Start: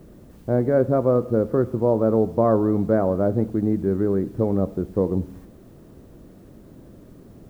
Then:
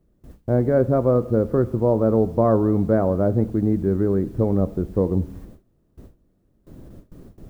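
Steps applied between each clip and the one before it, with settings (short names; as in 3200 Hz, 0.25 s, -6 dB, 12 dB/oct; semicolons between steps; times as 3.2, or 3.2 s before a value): gate with hold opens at -35 dBFS; low shelf 73 Hz +12 dB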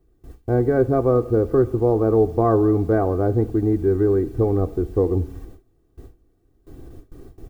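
comb 2.6 ms, depth 70%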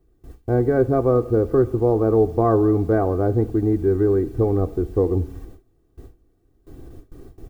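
nothing audible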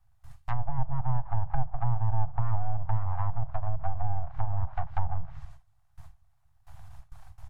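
full-wave rectifier; treble ducked by the level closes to 460 Hz, closed at -15 dBFS; inverse Chebyshev band-stop 200–500 Hz, stop band 40 dB; gain -2 dB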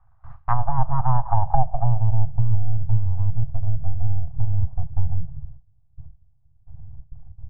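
low-pass sweep 1200 Hz -> 270 Hz, 1.14–2.52; gain +7.5 dB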